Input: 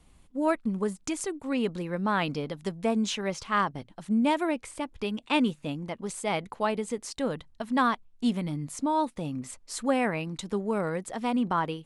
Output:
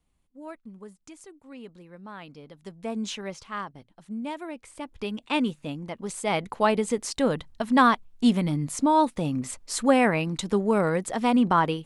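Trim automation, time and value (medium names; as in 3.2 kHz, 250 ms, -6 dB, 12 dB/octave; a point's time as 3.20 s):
2.32 s -15 dB
3.09 s -2.5 dB
3.66 s -9 dB
4.50 s -9 dB
4.99 s -0.5 dB
5.88 s -0.5 dB
6.68 s +6 dB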